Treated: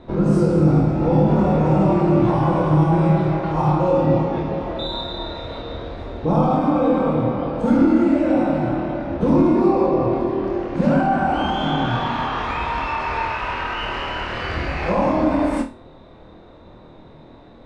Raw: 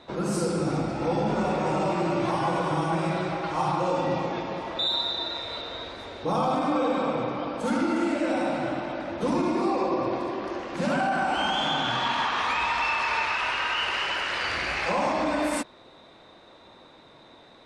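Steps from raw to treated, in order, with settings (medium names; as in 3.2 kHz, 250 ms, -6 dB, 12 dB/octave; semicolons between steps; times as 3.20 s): tilt EQ -4 dB/octave; flutter echo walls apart 4.4 m, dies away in 0.29 s; trim +1.5 dB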